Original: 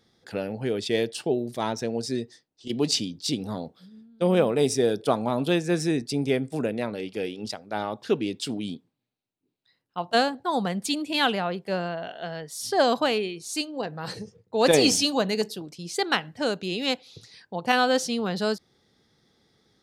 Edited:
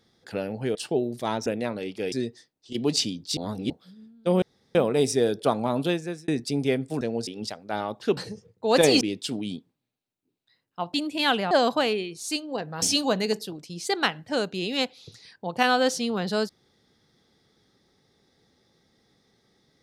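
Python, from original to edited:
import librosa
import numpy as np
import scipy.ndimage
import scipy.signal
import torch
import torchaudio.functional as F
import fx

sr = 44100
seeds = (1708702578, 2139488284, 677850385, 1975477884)

y = fx.edit(x, sr, fx.cut(start_s=0.75, length_s=0.35),
    fx.swap(start_s=1.81, length_s=0.26, other_s=6.63, other_length_s=0.66),
    fx.reverse_span(start_s=3.32, length_s=0.33),
    fx.insert_room_tone(at_s=4.37, length_s=0.33),
    fx.fade_out_span(start_s=5.42, length_s=0.48),
    fx.cut(start_s=10.12, length_s=0.77),
    fx.cut(start_s=11.46, length_s=1.3),
    fx.move(start_s=14.07, length_s=0.84, to_s=8.19), tone=tone)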